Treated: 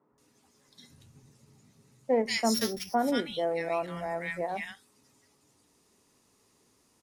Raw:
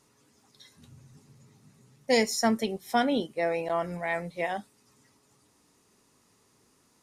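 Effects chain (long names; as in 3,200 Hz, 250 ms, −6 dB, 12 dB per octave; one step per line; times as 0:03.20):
0:02.36–0:02.81: samples sorted by size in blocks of 8 samples
three-band delay without the direct sound mids, lows, highs 120/180 ms, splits 150/1,400 Hz
every ending faded ahead of time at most 280 dB per second
level −1 dB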